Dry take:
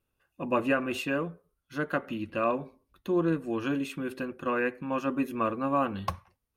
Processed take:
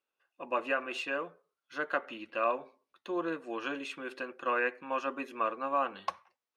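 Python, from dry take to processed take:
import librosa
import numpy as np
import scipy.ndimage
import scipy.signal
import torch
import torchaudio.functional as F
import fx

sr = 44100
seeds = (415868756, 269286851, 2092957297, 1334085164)

y = fx.rider(x, sr, range_db=10, speed_s=2.0)
y = fx.bandpass_edges(y, sr, low_hz=540.0, high_hz=6000.0)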